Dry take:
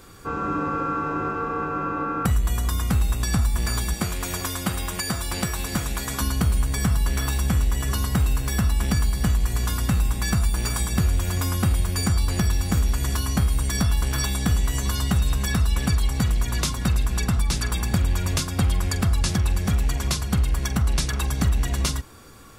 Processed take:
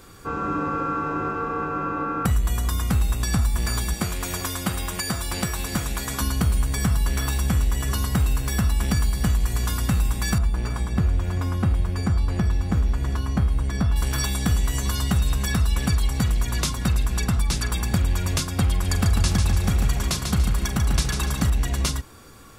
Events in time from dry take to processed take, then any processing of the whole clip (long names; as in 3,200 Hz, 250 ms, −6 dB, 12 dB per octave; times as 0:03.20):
0:10.38–0:13.96: low-pass filter 1,400 Hz 6 dB per octave
0:18.70–0:21.50: repeating echo 144 ms, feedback 36%, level −5.5 dB